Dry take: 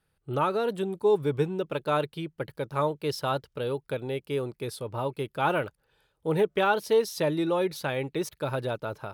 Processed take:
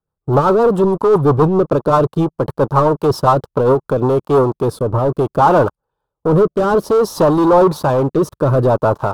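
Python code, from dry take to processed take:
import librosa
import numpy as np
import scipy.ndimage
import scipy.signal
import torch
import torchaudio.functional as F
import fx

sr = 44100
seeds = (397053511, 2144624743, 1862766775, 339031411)

y = fx.leveller(x, sr, passes=5)
y = fx.rotary_switch(y, sr, hz=7.5, then_hz=0.6, switch_at_s=3.6)
y = fx.high_shelf_res(y, sr, hz=1500.0, db=-11.5, q=3.0)
y = F.gain(torch.from_numpy(y), 4.5).numpy()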